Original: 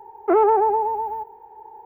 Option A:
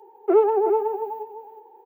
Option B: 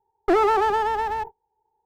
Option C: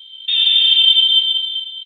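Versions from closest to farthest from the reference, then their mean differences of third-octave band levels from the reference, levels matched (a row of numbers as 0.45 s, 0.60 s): A, B, C; 2.5 dB, 8.0 dB, 13.0 dB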